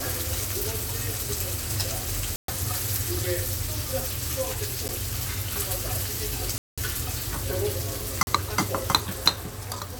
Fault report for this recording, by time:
0:02.36–0:02.48: drop-out 123 ms
0:04.88–0:04.89: drop-out 9.4 ms
0:06.58–0:06.78: drop-out 196 ms
0:08.23–0:08.27: drop-out 41 ms

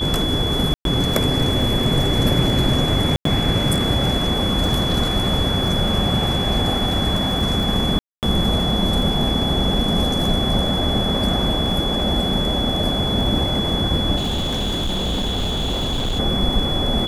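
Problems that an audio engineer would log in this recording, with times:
surface crackle 27 per second −26 dBFS
whistle 3,400 Hz −23 dBFS
0:00.74–0:00.85: drop-out 112 ms
0:03.16–0:03.25: drop-out 93 ms
0:07.99–0:08.23: drop-out 238 ms
0:14.16–0:16.20: clipping −18.5 dBFS

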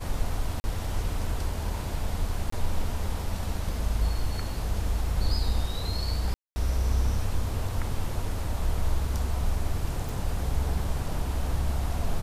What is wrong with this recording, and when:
0:00.60–0:00.64: drop-out 40 ms
0:02.50–0:02.52: drop-out 24 ms
0:06.34–0:06.56: drop-out 220 ms
0:10.09: click

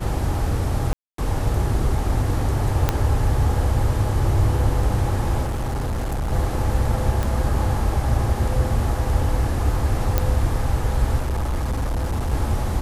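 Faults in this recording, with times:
0:00.93–0:01.18: drop-out 253 ms
0:02.89: click −4 dBFS
0:05.44–0:06.33: clipping −21 dBFS
0:07.23: click
0:10.18: click −5 dBFS
0:11.18–0:12.33: clipping −19.5 dBFS

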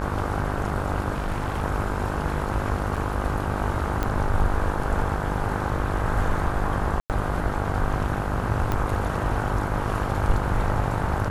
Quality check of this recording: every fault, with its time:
mains buzz 50 Hz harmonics 32 −29 dBFS
0:01.13–0:01.64: clipping −21.5 dBFS
0:02.96–0:02.97: drop-out 5.9 ms
0:04.03: click −12 dBFS
0:07.00–0:07.10: drop-out 98 ms
0:08.72: click −12 dBFS

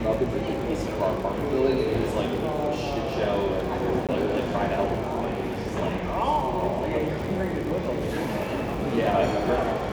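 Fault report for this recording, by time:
surface crackle 100 per second −33 dBFS
0:04.07–0:04.09: drop-out 17 ms

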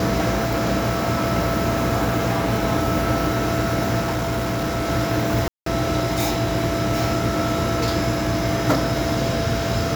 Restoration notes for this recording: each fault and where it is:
whistle 670 Hz −26 dBFS
0:04.00–0:04.89: clipping −19.5 dBFS
0:05.48–0:05.66: drop-out 183 ms

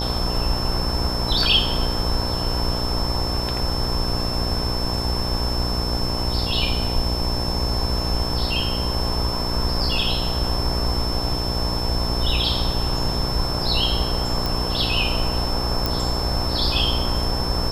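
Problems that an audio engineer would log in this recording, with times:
mains buzz 60 Hz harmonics 18 −27 dBFS
whistle 5,300 Hz −27 dBFS
0:14.46: click
0:15.86: click

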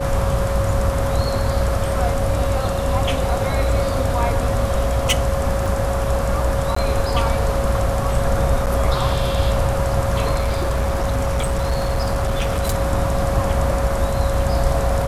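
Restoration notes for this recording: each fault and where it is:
whistle 550 Hz −24 dBFS
0:03.08–0:05.13: clipping −11 dBFS
0:05.66: drop-out 2.5 ms
0:06.75–0:06.76: drop-out 14 ms
0:08.66–0:08.67: drop-out 8.5 ms
0:10.34–0:12.75: clipping −15.5 dBFS

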